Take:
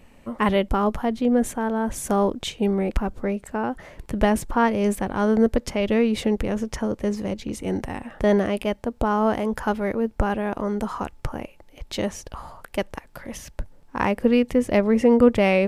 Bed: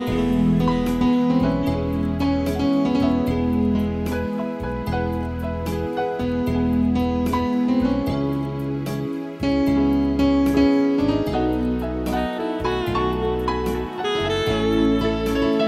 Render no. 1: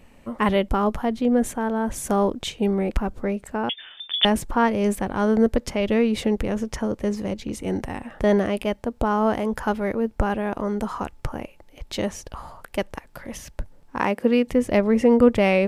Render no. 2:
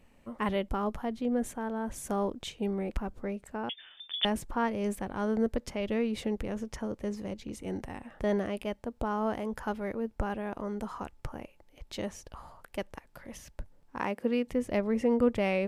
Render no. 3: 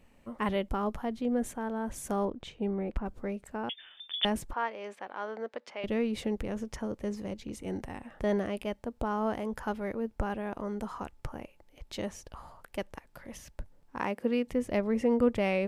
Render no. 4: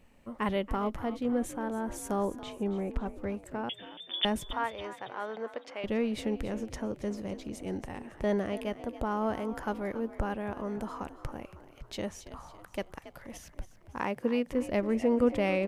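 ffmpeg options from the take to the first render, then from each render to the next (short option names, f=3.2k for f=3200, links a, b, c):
-filter_complex "[0:a]asettb=1/sr,asplit=3[a][b][c];[a]atrim=end=3.694[d];[b]atrim=start=3.69:end=4.25,asetpts=PTS-STARTPTS,afade=t=in:d=0.004:c=qsin,afade=t=out:st=0.556:d=0.004:c=qsin,lowpass=f=3.1k:t=q:w=0.5098,lowpass=f=3.1k:t=q:w=0.6013,lowpass=f=3.1k:t=q:w=0.9,lowpass=f=3.1k:t=q:w=2.563,afreqshift=-3600[e];[c]atrim=start=4.246[f];[d][e]acrossfade=d=0.004:c1=hsin:c2=qsin[g];[g][f]acrossfade=d=0.004:c1=qsin:c2=hsin,asettb=1/sr,asplit=3[h][i][j];[h]atrim=end=13.994[k];[i]atrim=start=13.99:end=14.47,asetpts=PTS-STARTPTS,afade=t=in:d=0.004:c=qsin,afade=t=out:st=0.476:d=0.004:c=qsin,highpass=180[l];[j]atrim=start=14.466[m];[k][l]acrossfade=d=0.004:c1=hsin:c2=qsin[n];[n][m]acrossfade=d=0.004:c1=qsin:c2=hsin"
-af "volume=-10dB"
-filter_complex "[0:a]asettb=1/sr,asplit=3[a][b][c];[a]atrim=end=2.254[d];[b]atrim=start=2.25:end=3.06,asetpts=PTS-STARTPTS,afade=t=in:d=0.004:c=qsin,afade=t=out:st=0.806:d=0.004:c=qsin,lowpass=f=1.9k:p=1[e];[c]atrim=start=3.056[f];[d][e]acrossfade=d=0.004:c1=hsin:c2=qsin[g];[g][f]acrossfade=d=0.004:c1=qsin:c2=hsin,asettb=1/sr,asplit=3[h][i][j];[h]atrim=end=4.534[k];[i]atrim=start=4.53:end=5.84,asetpts=PTS-STARTPTS,afade=t=in:d=0.004:c=qsin,afade=t=out:st=1.306:d=0.004:c=qsin,highpass=630,lowpass=3.8k[l];[j]atrim=start=5.836[m];[k][l]acrossfade=d=0.004:c1=hsin:c2=qsin[n];[n][m]acrossfade=d=0.004:c1=qsin:c2=hsin"
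-filter_complex "[0:a]asplit=6[a][b][c][d][e][f];[b]adelay=278,afreqshift=53,volume=-14.5dB[g];[c]adelay=556,afreqshift=106,volume=-20.5dB[h];[d]adelay=834,afreqshift=159,volume=-26.5dB[i];[e]adelay=1112,afreqshift=212,volume=-32.6dB[j];[f]adelay=1390,afreqshift=265,volume=-38.6dB[k];[a][g][h][i][j][k]amix=inputs=6:normalize=0"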